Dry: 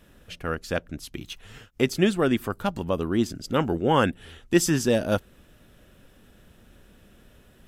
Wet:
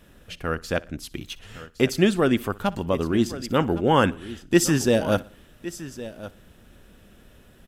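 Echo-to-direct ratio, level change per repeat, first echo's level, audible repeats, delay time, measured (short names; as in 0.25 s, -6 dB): -14.5 dB, no steady repeat, -22.0 dB, 3, 61 ms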